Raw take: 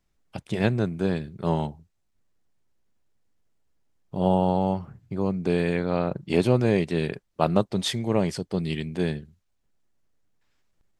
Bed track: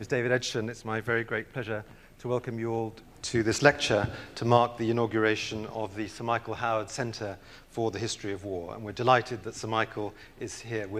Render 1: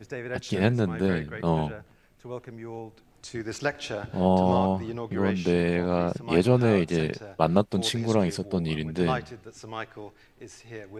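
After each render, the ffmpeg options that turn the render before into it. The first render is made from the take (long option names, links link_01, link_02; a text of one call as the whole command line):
ffmpeg -i in.wav -i bed.wav -filter_complex "[1:a]volume=-7.5dB[link_01];[0:a][link_01]amix=inputs=2:normalize=0" out.wav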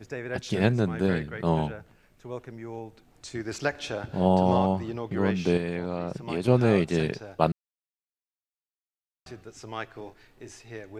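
ffmpeg -i in.wav -filter_complex "[0:a]asettb=1/sr,asplit=3[link_01][link_02][link_03];[link_01]atrim=end=5.574[link_04];[link_02]atrim=start=5.57:end=6.48,asetpts=PTS-STARTPTS,afade=type=in:duration=0.004:curve=qsin,afade=type=out:start_time=0.906:duration=0.004:curve=qsin,acompressor=threshold=-28dB:ratio=2.5:attack=3.2:release=140:knee=1:detection=peak[link_05];[link_03]atrim=start=6.476[link_06];[link_04][link_05]acrossfade=duration=0.004:curve1=hsin:curve2=qsin[link_07];[link_07][link_06]acrossfade=duration=0.004:curve1=qsin:curve2=hsin,asettb=1/sr,asplit=3[link_08][link_09][link_10];[link_08]atrim=end=9.924[link_11];[link_09]atrim=start=9.92:end=10.59,asetpts=PTS-STARTPTS,afade=type=in:duration=0.004:curve=qsin,afade=type=out:start_time=0.666:duration=0.004:curve=qsin,asplit=2[link_12][link_13];[link_13]adelay=33,volume=-8.5dB[link_14];[link_12][link_14]amix=inputs=2:normalize=0,atrim=end_sample=29547[link_15];[link_10]atrim=start=10.586[link_16];[link_11][link_15]acrossfade=duration=0.004:curve1=hsin:curve2=qsin[link_17];[link_17][link_16]acrossfade=duration=0.004:curve1=qsin:curve2=hsin,asplit=3[link_18][link_19][link_20];[link_18]atrim=end=7.52,asetpts=PTS-STARTPTS,afade=type=out:start_time=7.516:duration=0.004:curve=hsin[link_21];[link_19]atrim=start=7.52:end=9.26,asetpts=PTS-STARTPTS,volume=0[link_22];[link_20]atrim=start=9.26,asetpts=PTS-STARTPTS,afade=type=in:duration=0.004:curve=hsin[link_23];[link_21][link_22][link_23]concat=n=3:v=0:a=1" out.wav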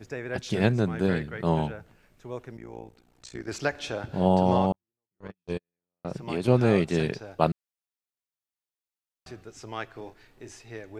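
ffmpeg -i in.wav -filter_complex "[0:a]asettb=1/sr,asplit=3[link_01][link_02][link_03];[link_01]atrim=end=2.574[link_04];[link_02]atrim=start=2.57:end=3.48,asetpts=PTS-STARTPTS,afade=type=in:duration=0.004:curve=qsin,afade=type=out:start_time=0.906:duration=0.004:curve=qsin,tremolo=f=60:d=0.947[link_05];[link_03]atrim=start=3.476[link_06];[link_04][link_05]acrossfade=duration=0.004:curve1=hsin:curve2=qsin[link_07];[link_07][link_06]acrossfade=duration=0.004:curve1=qsin:curve2=hsin,asettb=1/sr,asplit=3[link_08][link_09][link_10];[link_08]atrim=end=4.724[link_11];[link_09]atrim=start=4.72:end=6.05,asetpts=PTS-STARTPTS,afade=type=in:duration=0.004:curve=qsin,afade=type=out:start_time=1.326:duration=0.004:curve=qsin,agate=range=-60dB:threshold=-21dB:ratio=16:release=100:detection=peak[link_12];[link_10]atrim=start=6.046[link_13];[link_11][link_12]acrossfade=duration=0.004:curve1=hsin:curve2=qsin[link_14];[link_14][link_13]acrossfade=duration=0.004:curve1=qsin:curve2=hsin" out.wav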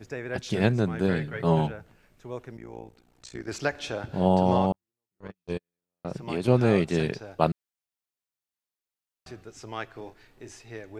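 ffmpeg -i in.wav -filter_complex "[0:a]asettb=1/sr,asplit=3[link_01][link_02][link_03];[link_01]atrim=end=1.184[link_04];[link_02]atrim=start=1.18:end=1.67,asetpts=PTS-STARTPTS,afade=type=in:duration=0.004:curve=qsin,afade=type=out:start_time=0.486:duration=0.004:curve=qsin,aecho=1:1:7.3:0.65,atrim=end_sample=21609[link_05];[link_03]atrim=start=1.666[link_06];[link_04][link_05]acrossfade=duration=0.004:curve1=hsin:curve2=qsin[link_07];[link_07][link_06]acrossfade=duration=0.004:curve1=qsin:curve2=hsin" out.wav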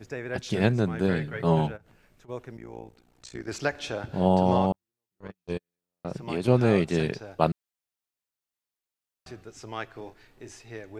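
ffmpeg -i in.wav -filter_complex "[0:a]asplit=3[link_01][link_02][link_03];[link_01]afade=type=out:start_time=1.76:duration=0.02[link_04];[link_02]acompressor=threshold=-51dB:ratio=10:attack=3.2:release=140:knee=1:detection=peak,afade=type=in:start_time=1.76:duration=0.02,afade=type=out:start_time=2.28:duration=0.02[link_05];[link_03]afade=type=in:start_time=2.28:duration=0.02[link_06];[link_04][link_05][link_06]amix=inputs=3:normalize=0" out.wav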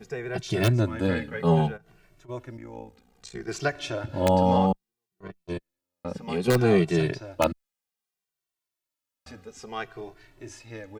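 ffmpeg -i in.wav -filter_complex "[0:a]asplit=2[link_01][link_02];[link_02]aeval=exprs='(mod(2.82*val(0)+1,2)-1)/2.82':channel_layout=same,volume=-4dB[link_03];[link_01][link_03]amix=inputs=2:normalize=0,asplit=2[link_04][link_05];[link_05]adelay=2.1,afreqshift=-0.62[link_06];[link_04][link_06]amix=inputs=2:normalize=1" out.wav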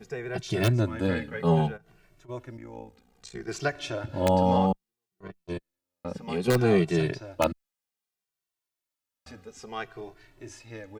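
ffmpeg -i in.wav -af "volume=-1.5dB" out.wav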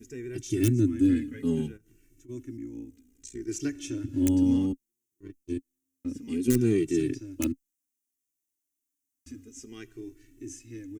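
ffmpeg -i in.wav -af "firequalizer=gain_entry='entry(110,0);entry(180,-15);entry(270,13);entry(480,-16);entry(680,-28);entry(1900,-9);entry(2900,-7);entry(4300,-12);entry(6100,5)':delay=0.05:min_phase=1" out.wav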